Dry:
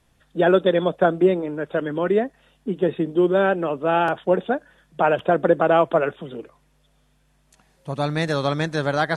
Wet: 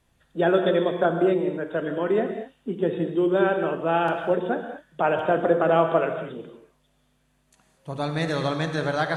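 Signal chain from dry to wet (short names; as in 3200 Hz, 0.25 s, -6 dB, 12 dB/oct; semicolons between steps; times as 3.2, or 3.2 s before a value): notch 5300 Hz, Q 16; non-linear reverb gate 0.26 s flat, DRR 5 dB; gain -4 dB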